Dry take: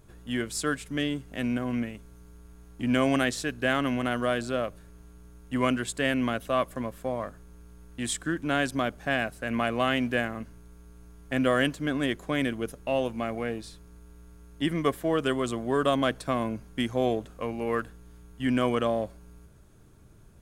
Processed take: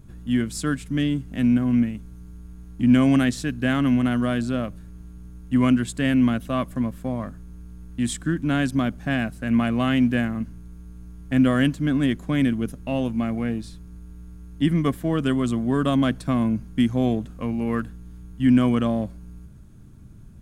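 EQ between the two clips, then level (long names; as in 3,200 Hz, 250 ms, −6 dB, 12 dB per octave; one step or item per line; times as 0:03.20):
low shelf with overshoot 320 Hz +9 dB, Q 1.5
0.0 dB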